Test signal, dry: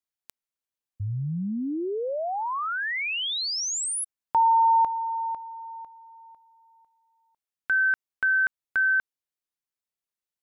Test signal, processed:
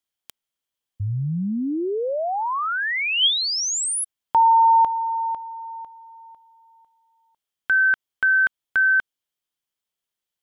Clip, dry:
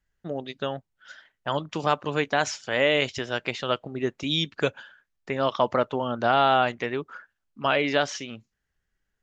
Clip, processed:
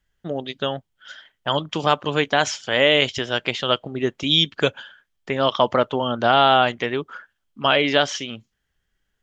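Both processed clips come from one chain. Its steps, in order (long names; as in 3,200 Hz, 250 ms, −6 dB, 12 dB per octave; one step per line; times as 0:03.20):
parametric band 3,200 Hz +9 dB 0.21 octaves
level +4.5 dB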